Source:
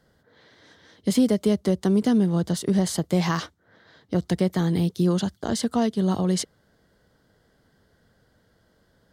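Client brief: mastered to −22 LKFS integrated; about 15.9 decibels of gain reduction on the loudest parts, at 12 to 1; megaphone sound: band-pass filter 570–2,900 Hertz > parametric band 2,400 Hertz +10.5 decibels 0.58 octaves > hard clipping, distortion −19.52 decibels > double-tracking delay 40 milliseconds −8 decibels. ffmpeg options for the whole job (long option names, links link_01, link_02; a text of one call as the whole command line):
ffmpeg -i in.wav -filter_complex "[0:a]acompressor=threshold=-32dB:ratio=12,highpass=570,lowpass=2900,equalizer=frequency=2400:width_type=o:width=0.58:gain=10.5,asoftclip=type=hard:threshold=-32dB,asplit=2[link_01][link_02];[link_02]adelay=40,volume=-8dB[link_03];[link_01][link_03]amix=inputs=2:normalize=0,volume=24dB" out.wav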